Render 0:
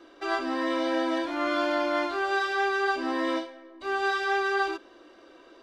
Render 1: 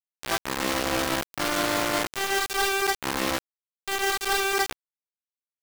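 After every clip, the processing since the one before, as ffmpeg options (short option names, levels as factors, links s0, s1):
-af "acrusher=bits=3:mix=0:aa=0.000001"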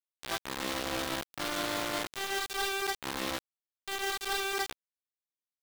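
-af "equalizer=f=3600:w=2.7:g=4,volume=0.376"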